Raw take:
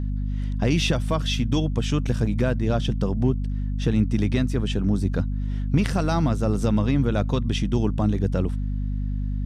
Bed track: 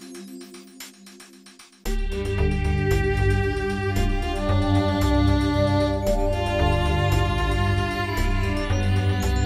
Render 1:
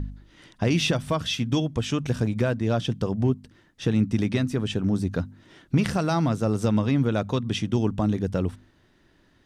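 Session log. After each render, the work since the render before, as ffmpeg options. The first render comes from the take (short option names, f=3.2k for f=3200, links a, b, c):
-af "bandreject=f=50:t=h:w=4,bandreject=f=100:t=h:w=4,bandreject=f=150:t=h:w=4,bandreject=f=200:t=h:w=4,bandreject=f=250:t=h:w=4"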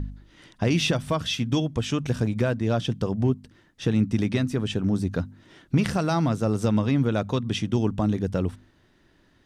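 -af anull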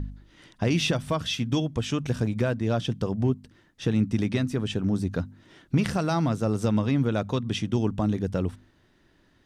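-af "volume=-1.5dB"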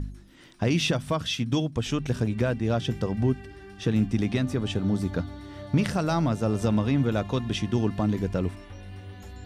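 -filter_complex "[1:a]volume=-20dB[a];[0:a][a]amix=inputs=2:normalize=0"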